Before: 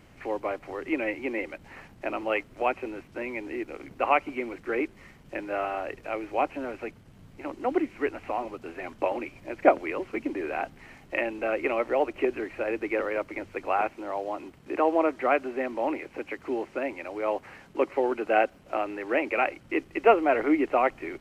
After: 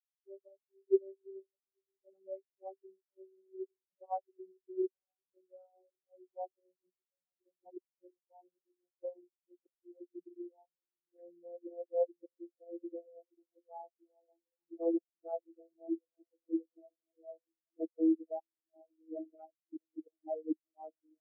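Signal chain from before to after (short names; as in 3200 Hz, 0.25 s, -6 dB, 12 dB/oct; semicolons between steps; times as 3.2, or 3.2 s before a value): vocoder on a gliding note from G3, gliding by -4 st; high shelf 3600 Hz +3 dB; flipped gate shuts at -15 dBFS, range -29 dB; diffused feedback echo 0.904 s, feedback 69%, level -13.5 dB; spectral expander 4:1; gain -3 dB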